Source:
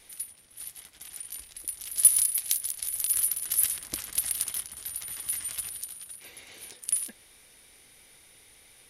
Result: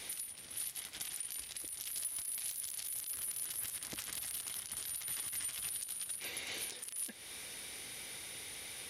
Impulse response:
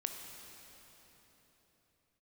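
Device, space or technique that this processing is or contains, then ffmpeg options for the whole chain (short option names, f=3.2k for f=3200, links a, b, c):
broadcast voice chain: -af "highpass=77,deesser=0.55,acompressor=threshold=-49dB:ratio=3,equalizer=f=3.8k:t=o:w=1.8:g=3,alimiter=level_in=10.5dB:limit=-24dB:level=0:latency=1:release=65,volume=-10.5dB,volume=8dB"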